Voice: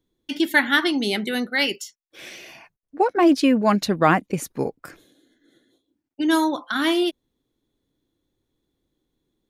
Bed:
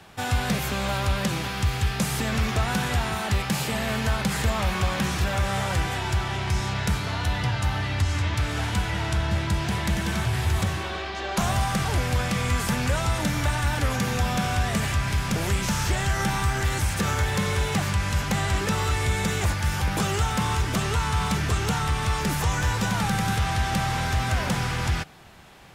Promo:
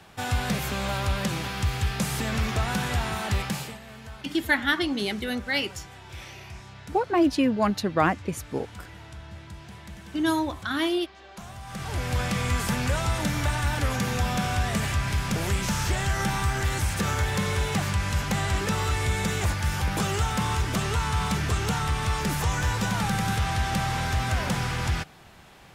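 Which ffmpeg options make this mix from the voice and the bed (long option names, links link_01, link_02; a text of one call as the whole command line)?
ffmpeg -i stem1.wav -i stem2.wav -filter_complex "[0:a]adelay=3950,volume=-5dB[link_01];[1:a]volume=14dB,afade=type=out:start_time=3.42:duration=0.37:silence=0.16788,afade=type=in:start_time=11.63:duration=0.6:silence=0.158489[link_02];[link_01][link_02]amix=inputs=2:normalize=0" out.wav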